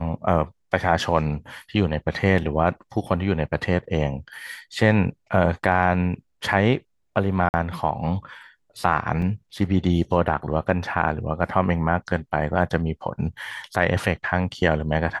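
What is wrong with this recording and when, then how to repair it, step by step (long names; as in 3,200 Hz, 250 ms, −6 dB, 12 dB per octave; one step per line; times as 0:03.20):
0:07.49–0:07.54: drop-out 49 ms
0:09.22: drop-out 3.5 ms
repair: repair the gap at 0:07.49, 49 ms
repair the gap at 0:09.22, 3.5 ms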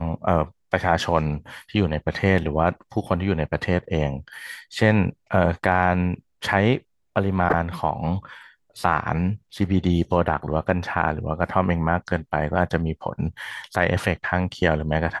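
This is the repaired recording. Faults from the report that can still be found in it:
none of them is left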